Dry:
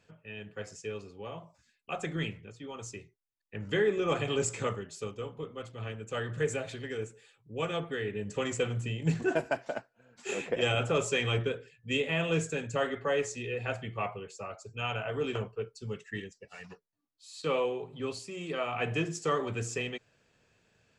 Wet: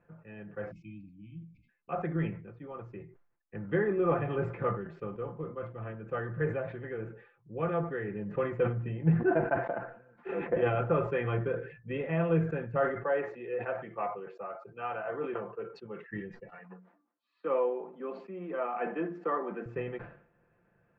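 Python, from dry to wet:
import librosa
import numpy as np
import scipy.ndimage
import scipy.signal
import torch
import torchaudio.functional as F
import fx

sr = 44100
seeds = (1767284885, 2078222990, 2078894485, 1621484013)

y = fx.spec_erase(x, sr, start_s=0.71, length_s=0.98, low_hz=330.0, high_hz=2100.0)
y = fx.bandpass_edges(y, sr, low_hz=290.0, high_hz=7500.0, at=(13.03, 16.07))
y = fx.cheby_ripple_highpass(y, sr, hz=180.0, ripple_db=3, at=(16.58, 19.66))
y = scipy.signal.sosfilt(scipy.signal.butter(4, 1700.0, 'lowpass', fs=sr, output='sos'), y)
y = y + 0.51 * np.pad(y, (int(5.8 * sr / 1000.0), 0))[:len(y)]
y = fx.sustainer(y, sr, db_per_s=100.0)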